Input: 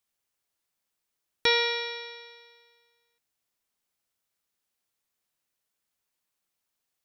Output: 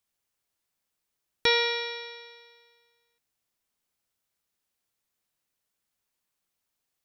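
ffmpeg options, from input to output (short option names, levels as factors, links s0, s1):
-af "lowshelf=f=240:g=3.5"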